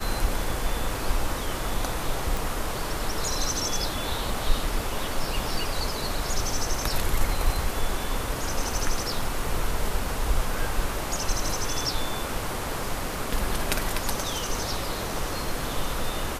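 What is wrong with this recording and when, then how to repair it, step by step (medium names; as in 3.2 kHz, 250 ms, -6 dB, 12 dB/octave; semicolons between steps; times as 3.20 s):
2.37 s: pop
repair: de-click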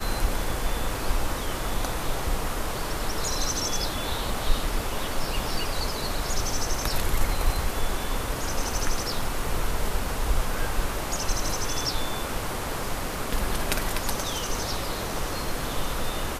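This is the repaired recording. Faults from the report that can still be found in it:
nothing left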